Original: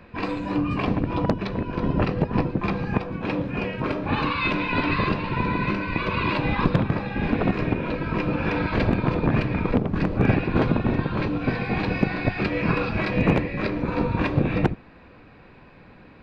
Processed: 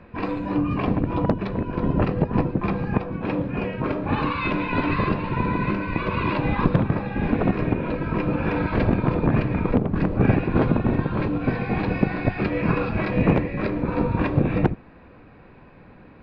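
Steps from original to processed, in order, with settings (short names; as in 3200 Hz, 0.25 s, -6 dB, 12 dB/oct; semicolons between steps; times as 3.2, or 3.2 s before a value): LPF 1700 Hz 6 dB/oct; gain +1.5 dB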